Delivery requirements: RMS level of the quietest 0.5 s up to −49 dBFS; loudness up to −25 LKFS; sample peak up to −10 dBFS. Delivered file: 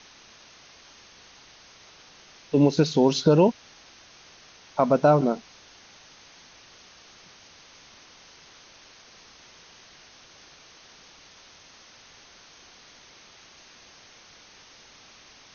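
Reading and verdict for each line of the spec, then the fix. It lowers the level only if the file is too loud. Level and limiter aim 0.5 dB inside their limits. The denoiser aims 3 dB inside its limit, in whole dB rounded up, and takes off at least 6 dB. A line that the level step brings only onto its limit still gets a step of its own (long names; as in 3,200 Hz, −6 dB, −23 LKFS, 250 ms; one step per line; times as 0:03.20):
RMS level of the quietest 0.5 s −52 dBFS: in spec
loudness −21.5 LKFS: out of spec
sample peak −7.0 dBFS: out of spec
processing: level −4 dB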